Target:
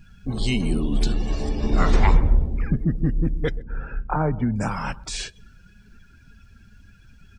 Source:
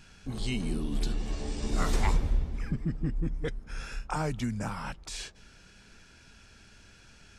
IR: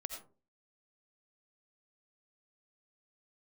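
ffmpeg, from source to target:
-filter_complex "[0:a]asettb=1/sr,asplit=3[s0][s1][s2];[s0]atrim=end=1.494[s3];[s1]atrim=start=1.49:end=2.97,asetpts=PTS-STARTPTS,afade=t=in:d=0.004:c=qsin,afade=t=out:st=1.476:d=0.004:c=qsin,aemphasis=mode=reproduction:type=50fm[s4];[s2]atrim=start=2.966[s5];[s3][s4]acrossfade=d=0.004:c1=hsin:c2=qsin[s6];[s6][s5]acrossfade=d=0.004:c1=qsin:c2=hsin,acrusher=bits=10:mix=0:aa=0.000001,asettb=1/sr,asplit=3[s7][s8][s9];[s7]atrim=end=3.564[s10];[s8]atrim=start=3.56:end=4.56,asetpts=PTS-STARTPTS,afade=t=in:d=0.004:c=qsin,afade=t=out:st=0.996:d=0.004:c=qsin,lowpass=1400[s11];[s9]atrim=start=4.556[s12];[s10][s11]acrossfade=d=0.004:c1=hsin:c2=qsin[s13];[s13][s12]acrossfade=d=0.004:c1=qsin:c2=hsin,aecho=1:1:129|258|387|516:0.112|0.0516|0.0237|0.0109,afftdn=nr=18:nf=-50,volume=2.82"

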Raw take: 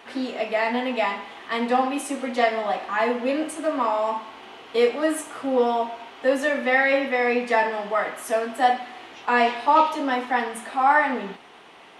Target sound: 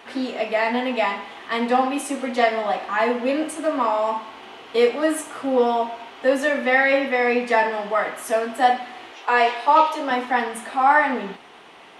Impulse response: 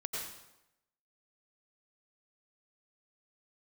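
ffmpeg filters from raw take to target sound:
-filter_complex "[0:a]asettb=1/sr,asplit=3[s0][s1][s2];[s0]atrim=end=9.114[s3];[s1]atrim=start=9.11:end=10.11,asetpts=PTS-STARTPTS,afade=t=in:d=0.004:c=qsin,afade=t=out:st=0.996:d=0.004:c=qsin,highpass=f=320:w=0.5412,highpass=f=320:w=1.3066[s4];[s2]atrim=start=10.106[s5];[s3][s4]acrossfade=d=0.004:c1=hsin:c2=qsin[s6];[s6][s5]acrossfade=d=0.004:c1=qsin:c2=hsin,volume=1.26"

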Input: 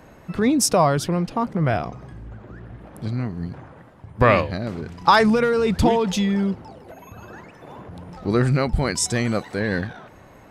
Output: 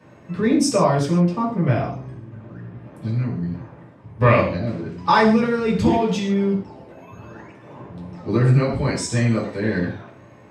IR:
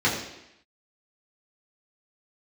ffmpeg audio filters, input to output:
-filter_complex "[1:a]atrim=start_sample=2205,afade=t=out:st=0.25:d=0.01,atrim=end_sample=11466,asetrate=52920,aresample=44100[s0];[0:a][s0]afir=irnorm=-1:irlink=0,volume=0.178"

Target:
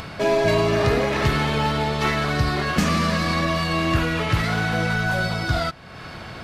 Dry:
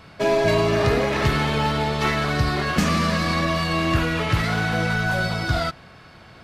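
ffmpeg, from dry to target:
-af "acompressor=mode=upward:threshold=0.0562:ratio=2.5"

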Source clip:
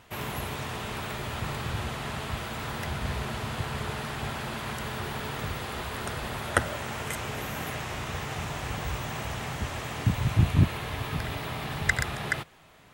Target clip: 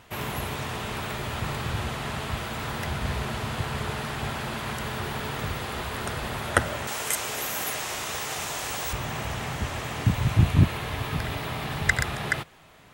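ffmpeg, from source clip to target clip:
-filter_complex "[0:a]asettb=1/sr,asplit=3[s0][s1][s2];[s0]atrim=end=6.874[s3];[s1]atrim=start=6.87:end=8.93,asetpts=PTS-STARTPTS,afade=t=in:d=0.004:c=qsin,afade=t=out:st=2.056:d=0.004:c=qsin,bass=f=250:g=-12,treble=f=4000:g=10[s4];[s2]atrim=start=8.926[s5];[s3][s4]acrossfade=d=0.004:c1=hsin:c2=qsin[s6];[s6][s5]acrossfade=d=0.004:c1=qsin:c2=hsin,volume=1.33"

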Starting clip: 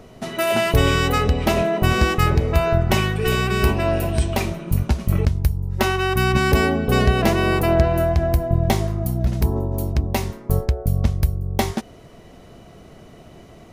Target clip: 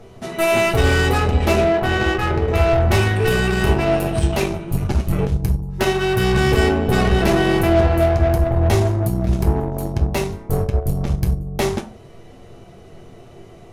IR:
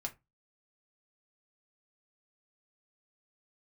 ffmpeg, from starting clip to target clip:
-filter_complex "[0:a]asettb=1/sr,asplit=3[s0][s1][s2];[s0]atrim=end=1.644[s3];[s1]atrim=start=1.64:end=2.48,asetpts=PTS-STARTPTS,afade=t=in:d=0.004:c=qsin,afade=t=out:st=0.836:d=0.004:c=qsin,bass=f=250:g=-7,treble=f=4000:g=-11[s4];[s2]atrim=start=2.476[s5];[s3][s4]acrossfade=d=0.004:c1=hsin:c2=qsin[s6];[s6][s5]acrossfade=d=0.004:c1=qsin:c2=hsin,asoftclip=type=tanh:threshold=0.211[s7];[1:a]atrim=start_sample=2205,asetrate=25137,aresample=44100[s8];[s7][s8]afir=irnorm=-1:irlink=0,asplit=2[s9][s10];[s10]acrusher=bits=2:mix=0:aa=0.5,volume=0.447[s11];[s9][s11]amix=inputs=2:normalize=0,volume=0.75"

